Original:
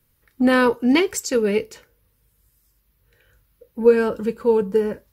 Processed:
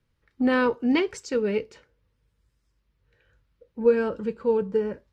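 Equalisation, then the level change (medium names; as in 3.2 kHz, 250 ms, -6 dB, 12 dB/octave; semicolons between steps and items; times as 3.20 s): distance through air 110 m; -5.0 dB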